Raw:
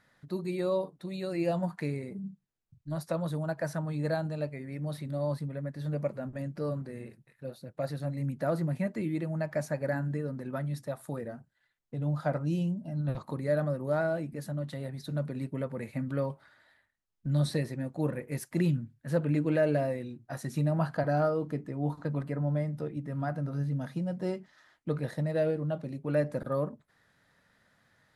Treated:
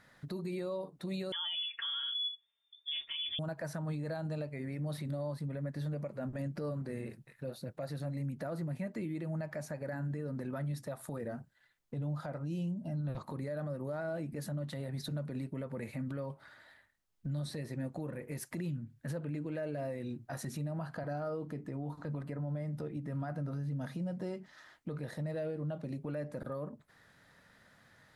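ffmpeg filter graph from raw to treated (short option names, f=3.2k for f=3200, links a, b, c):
-filter_complex "[0:a]asettb=1/sr,asplit=3[a][b][c];[a]atrim=end=1.324[d];[b]atrim=start=1.32:end=3.39,asetpts=PTS-STARTPTS,afade=t=in:d=0.004:c=qsin,afade=t=out:st=2.066:d=0.004:c=qsin,equalizer=f=450:w=2.5:g=-6,aecho=1:1:4.1:0.88,atrim=end_sample=91287,lowpass=f=3.1k:t=q:w=0.5098,lowpass=f=3.1k:t=q:w=0.6013,lowpass=f=3.1k:t=q:w=0.9,lowpass=f=3.1k:t=q:w=2.563,afreqshift=-3600[e];[c]atrim=start=3.386[f];[d][e]acrossfade=d=0.004:c1=hsin:c2=qsin[g];[g][f]acrossfade=d=0.004:c1=qsin:c2=hsin,acompressor=threshold=-38dB:ratio=6,alimiter=level_in=11dB:limit=-24dB:level=0:latency=1:release=38,volume=-11dB,volume=4.5dB"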